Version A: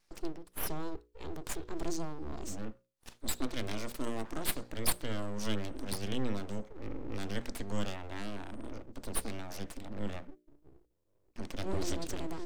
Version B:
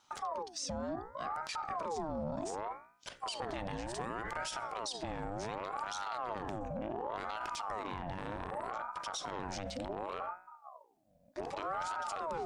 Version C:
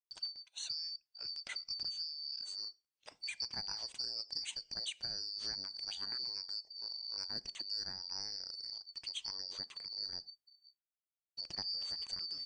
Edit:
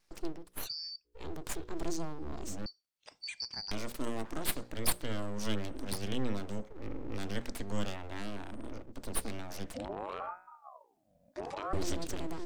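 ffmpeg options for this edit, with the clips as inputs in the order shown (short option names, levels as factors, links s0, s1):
-filter_complex "[2:a]asplit=2[s0][s1];[0:a]asplit=4[s2][s3][s4][s5];[s2]atrim=end=0.68[s6];[s0]atrim=start=0.58:end=1.14[s7];[s3]atrim=start=1.04:end=2.662[s8];[s1]atrim=start=2.658:end=3.712[s9];[s4]atrim=start=3.708:end=9.742[s10];[1:a]atrim=start=9.738:end=11.732[s11];[s5]atrim=start=11.728[s12];[s6][s7]acrossfade=d=0.1:c1=tri:c2=tri[s13];[s13][s8]acrossfade=d=0.1:c1=tri:c2=tri[s14];[s14][s9]acrossfade=d=0.004:c1=hsin:c2=hsin[s15];[s15][s10]acrossfade=d=0.004:c1=hsin:c2=hsin[s16];[s16][s11]acrossfade=d=0.004:c1=hsin:c2=hsin[s17];[s17][s12]acrossfade=d=0.004:c1=hsin:c2=hsin"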